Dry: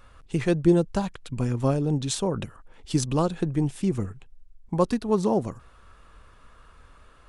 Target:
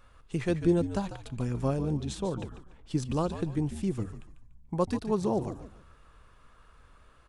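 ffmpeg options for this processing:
-filter_complex "[0:a]asettb=1/sr,asplit=3[a][b][c];[a]atrim=end=1.974[d];[b]atrim=start=1.97:end=3.1,asetpts=PTS-STARTPTS,afade=t=in:d=0.004:c=qsin,afade=t=out:st=1.126:d=0.004:c=qsin,highshelf=f=3.3k:g=-9.5[e];[c]atrim=start=3.096[f];[d][e]acrossfade=d=0.004:c1=hsin:c2=qsin[g];[g][f]acrossfade=d=0.004:c1=qsin:c2=hsin,asplit=5[h][i][j][k][l];[i]adelay=145,afreqshift=-74,volume=-11dB[m];[j]adelay=290,afreqshift=-148,volume=-20.1dB[n];[k]adelay=435,afreqshift=-222,volume=-29.2dB[o];[l]adelay=580,afreqshift=-296,volume=-38.4dB[p];[h][m][n][o][p]amix=inputs=5:normalize=0,volume=-5.5dB"

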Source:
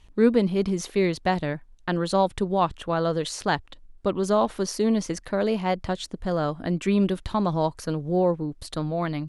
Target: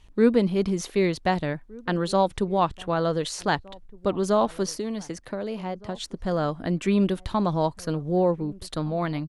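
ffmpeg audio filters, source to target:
-filter_complex "[0:a]asettb=1/sr,asplit=3[a][b][c];[a]atrim=end=4.744[d];[b]atrim=start=4.74:end=5.96,asetpts=PTS-STARTPTS,afade=t=in:d=0.004:c=qsin,afade=t=out:st=1.216:d=0.004:c=qsin,acrossover=split=100|750[e][f][g];[e]acompressor=threshold=-54dB:ratio=4[h];[f]acompressor=threshold=-30dB:ratio=4[i];[g]acompressor=threshold=-41dB:ratio=4[j];[h][i][j]amix=inputs=3:normalize=0[k];[c]atrim=start=5.956[l];[d][k]acrossfade=d=0.004:c1=hsin:c2=qsin[m];[m][l]acrossfade=d=0.004:c1=qsin:c2=hsin,asplit=2[n][o];[o]adelay=1516,volume=-23dB,highshelf=f=4k:g=-34.1[p];[n][p]amix=inputs=2:normalize=0"

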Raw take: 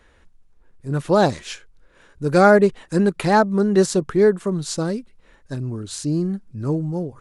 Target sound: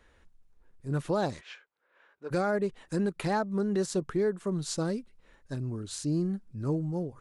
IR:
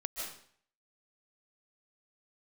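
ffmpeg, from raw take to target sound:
-filter_complex "[0:a]asplit=3[a][b][c];[a]afade=t=out:st=1.4:d=0.02[d];[b]highpass=630,lowpass=2.5k,afade=t=in:st=1.4:d=0.02,afade=t=out:st=2.3:d=0.02[e];[c]afade=t=in:st=2.3:d=0.02[f];[d][e][f]amix=inputs=3:normalize=0,alimiter=limit=-13dB:level=0:latency=1:release=287,volume=-7dB"

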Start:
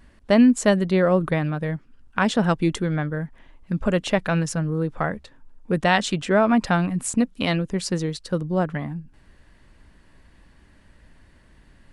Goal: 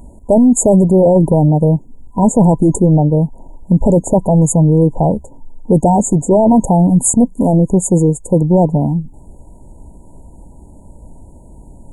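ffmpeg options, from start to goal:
-af "apsyclip=19.5dB,afftfilt=real='re*(1-between(b*sr/4096,1000,6600))':imag='im*(1-between(b*sr/4096,1000,6600))':win_size=4096:overlap=0.75,volume=-4dB"

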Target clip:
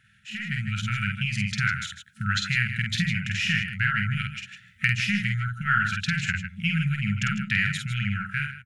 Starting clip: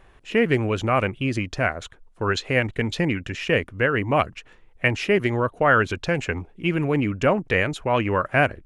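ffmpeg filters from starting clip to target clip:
-af "highpass=f=94:w=0.5412,highpass=f=94:w=1.3066,acompressor=threshold=-39dB:ratio=2,aeval=exprs='0.158*(cos(1*acos(clip(val(0)/0.158,-1,1)))-cos(1*PI/2))+0.0112*(cos(2*acos(clip(val(0)/0.158,-1,1)))-cos(2*PI/2))':c=same,aecho=1:1:49|51|141|156:0.668|0.15|0.133|0.316,afftfilt=real='re*(1-between(b*sr/4096,220,1300))':imag='im*(1-between(b*sr/4096,220,1300))':win_size=4096:overlap=0.75,dynaudnorm=f=110:g=11:m=12.5dB,volume=-2.5dB"

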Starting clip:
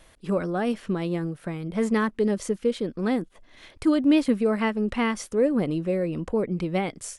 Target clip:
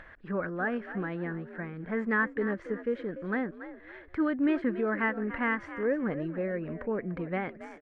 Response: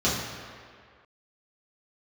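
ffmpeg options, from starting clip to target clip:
-filter_complex "[0:a]asplit=2[a][b];[b]asplit=3[c][d][e];[c]adelay=264,afreqshift=59,volume=-13dB[f];[d]adelay=528,afreqshift=118,volume=-23.2dB[g];[e]adelay=792,afreqshift=177,volume=-33.3dB[h];[f][g][h]amix=inputs=3:normalize=0[i];[a][i]amix=inputs=2:normalize=0,atempo=0.92,lowpass=f=1.7k:t=q:w=5.1,acompressor=mode=upward:threshold=-34dB:ratio=2.5,volume=-8dB"

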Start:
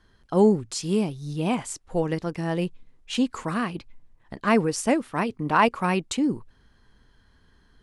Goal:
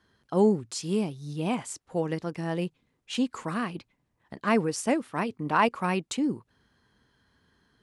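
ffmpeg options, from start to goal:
-af "highpass=98,volume=-3.5dB"

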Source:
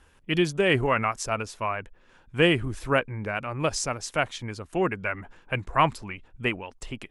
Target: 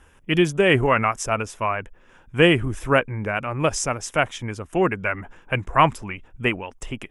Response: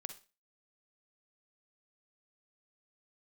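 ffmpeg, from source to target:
-af "equalizer=f=4.3k:w=4.4:g=-14,volume=5dB"

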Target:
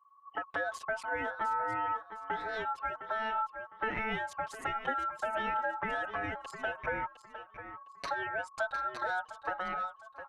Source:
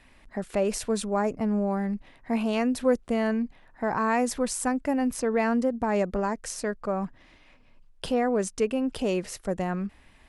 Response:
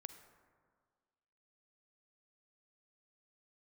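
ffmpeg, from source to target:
-filter_complex "[0:a]deesser=0.45,aemphasis=mode=reproduction:type=50fm,anlmdn=0.631,acompressor=threshold=-30dB:ratio=8,aeval=exprs='val(0)*sin(2*PI*1100*n/s)':c=same,aecho=1:1:708|1416|2124:0.282|0.0761|0.0205,asplit=2[a][b];[b]adelay=6.4,afreqshift=-0.53[c];[a][c]amix=inputs=2:normalize=1,volume=4.5dB"

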